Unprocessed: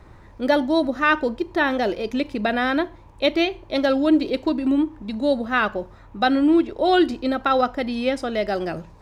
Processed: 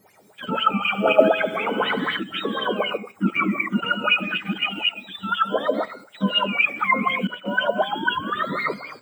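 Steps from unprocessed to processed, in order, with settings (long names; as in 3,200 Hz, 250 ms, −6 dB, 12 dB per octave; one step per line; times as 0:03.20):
frequency axis turned over on the octave scale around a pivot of 880 Hz
comb and all-pass reverb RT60 0.42 s, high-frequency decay 0.55×, pre-delay 110 ms, DRR 1.5 dB
0:07.66–0:08.51: sound drawn into the spectrogram rise 660–1,400 Hz −26 dBFS
0:07.27–0:08.38: downward expander −20 dBFS
notch filter 2,700 Hz, Q 9.6
0:00.78–0:02.17: flutter between parallel walls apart 12 metres, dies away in 1.1 s
in parallel at +3 dB: output level in coarse steps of 15 dB
on the sum: auto-filter bell 4 Hz 200–2,800 Hz +18 dB
level −13 dB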